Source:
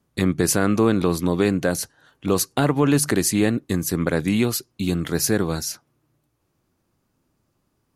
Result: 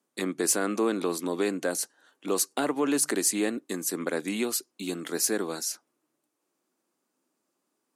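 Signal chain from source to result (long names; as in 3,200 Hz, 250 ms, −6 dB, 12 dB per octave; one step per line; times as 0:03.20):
high-pass filter 250 Hz 24 dB per octave
parametric band 8,200 Hz +7 dB 0.67 octaves
soft clipping −5 dBFS, distortion −29 dB
level −6 dB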